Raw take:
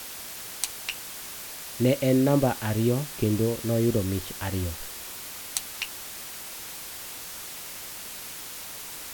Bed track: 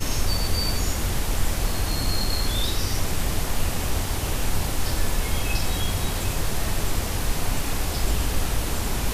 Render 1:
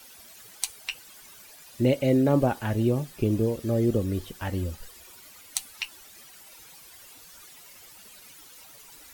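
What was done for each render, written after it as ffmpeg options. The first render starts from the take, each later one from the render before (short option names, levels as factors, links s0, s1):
-af "afftdn=nr=14:nf=-39"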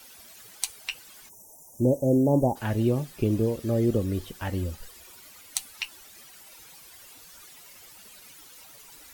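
-filter_complex "[0:a]asplit=3[s0][s1][s2];[s0]afade=t=out:st=1.28:d=0.02[s3];[s1]asuperstop=centerf=2400:order=20:qfactor=0.51,afade=t=in:st=1.28:d=0.02,afade=t=out:st=2.55:d=0.02[s4];[s2]afade=t=in:st=2.55:d=0.02[s5];[s3][s4][s5]amix=inputs=3:normalize=0"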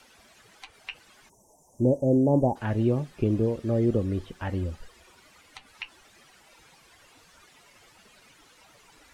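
-filter_complex "[0:a]acrossover=split=2800[s0][s1];[s1]acompressor=threshold=0.002:ratio=4:attack=1:release=60[s2];[s0][s2]amix=inputs=2:normalize=0,lowpass=8100"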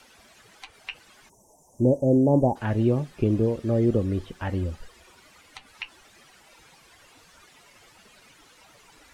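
-af "volume=1.26"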